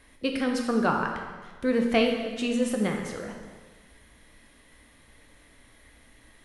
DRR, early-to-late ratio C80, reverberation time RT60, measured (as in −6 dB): 1.5 dB, 5.5 dB, 1.4 s